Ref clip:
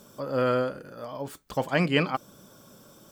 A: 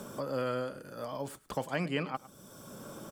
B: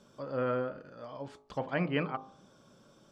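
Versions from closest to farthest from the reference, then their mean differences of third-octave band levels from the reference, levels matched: B, A; 4.0, 6.5 dB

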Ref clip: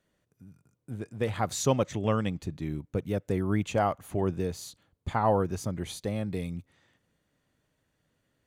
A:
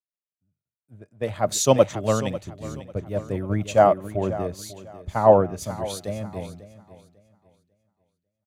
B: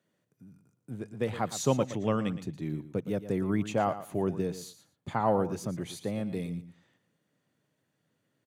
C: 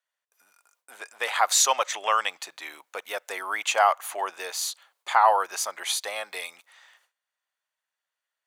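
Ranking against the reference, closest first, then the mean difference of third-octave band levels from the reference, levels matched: B, A, C; 3.0, 7.0, 14.5 dB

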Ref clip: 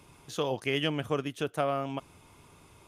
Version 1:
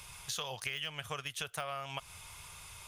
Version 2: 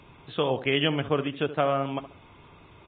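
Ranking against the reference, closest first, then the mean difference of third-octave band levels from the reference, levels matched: 2, 1; 5.5, 10.5 dB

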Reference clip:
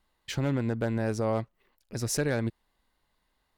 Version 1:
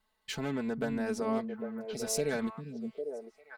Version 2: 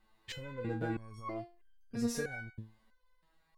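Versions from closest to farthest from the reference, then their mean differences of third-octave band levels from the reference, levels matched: 1, 2; 4.5, 7.0 dB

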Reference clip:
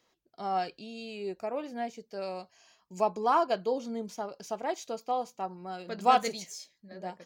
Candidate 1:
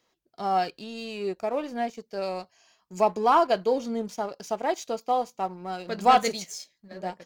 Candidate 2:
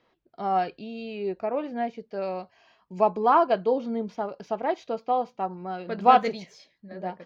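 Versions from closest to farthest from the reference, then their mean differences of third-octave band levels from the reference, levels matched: 1, 2; 1.5, 3.0 dB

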